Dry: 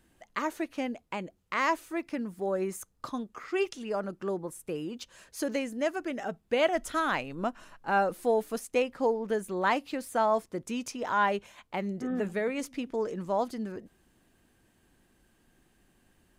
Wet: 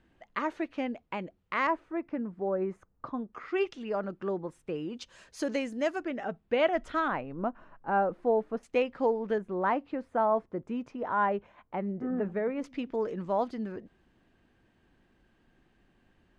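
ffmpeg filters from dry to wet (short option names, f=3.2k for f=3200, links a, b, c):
-af "asetnsamples=n=441:p=0,asendcmd='1.67 lowpass f 1400;3.33 lowpass f 3200;4.95 lowpass f 6200;6.03 lowpass f 2900;7.08 lowpass f 1300;8.63 lowpass f 3300;9.38 lowpass f 1400;12.64 lowpass f 3400',lowpass=3.2k"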